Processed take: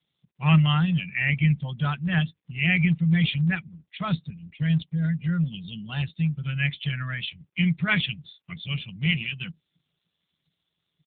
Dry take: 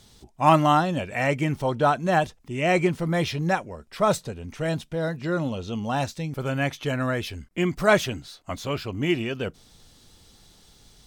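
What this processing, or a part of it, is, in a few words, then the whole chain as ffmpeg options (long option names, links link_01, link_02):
mobile call with aggressive noise cancelling: -af "highpass=150,firequalizer=gain_entry='entry(110,0);entry(160,12);entry(270,-22);entry(970,-11);entry(2000,5);entry(3900,9);entry(6300,-28);entry(9400,4);entry(14000,-5)':delay=0.05:min_phase=1,afftdn=noise_reduction=22:noise_floor=-35" -ar 8000 -c:a libopencore_amrnb -b:a 7950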